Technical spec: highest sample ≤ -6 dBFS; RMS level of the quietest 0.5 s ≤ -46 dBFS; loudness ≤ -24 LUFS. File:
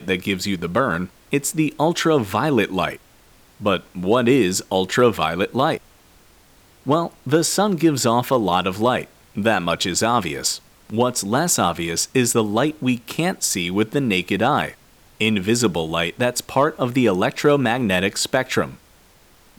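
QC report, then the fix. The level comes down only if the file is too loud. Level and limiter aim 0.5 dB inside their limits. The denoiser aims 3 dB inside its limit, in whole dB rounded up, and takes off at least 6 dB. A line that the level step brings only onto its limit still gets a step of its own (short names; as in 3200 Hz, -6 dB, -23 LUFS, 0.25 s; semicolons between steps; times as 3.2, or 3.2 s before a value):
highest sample -5.0 dBFS: fail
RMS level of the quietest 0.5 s -52 dBFS: OK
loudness -20.0 LUFS: fail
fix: gain -4.5 dB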